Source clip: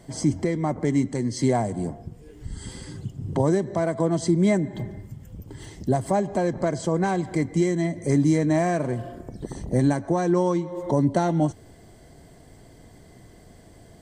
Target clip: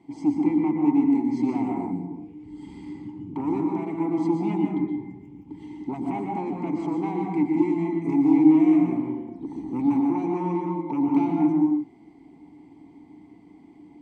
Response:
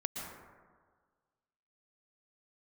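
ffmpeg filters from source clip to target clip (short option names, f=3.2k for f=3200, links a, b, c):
-filter_complex "[0:a]aeval=exprs='0.376*(cos(1*acos(clip(val(0)/0.376,-1,1)))-cos(1*PI/2))+0.15*(cos(5*acos(clip(val(0)/0.376,-1,1)))-cos(5*PI/2))':c=same,asplit=3[a][b][c];[a]bandpass=f=300:t=q:w=8,volume=0dB[d];[b]bandpass=f=870:t=q:w=8,volume=-6dB[e];[c]bandpass=f=2.24k:t=q:w=8,volume=-9dB[f];[d][e][f]amix=inputs=3:normalize=0[g];[1:a]atrim=start_sample=2205,afade=t=out:st=0.4:d=0.01,atrim=end_sample=18081[h];[g][h]afir=irnorm=-1:irlink=0"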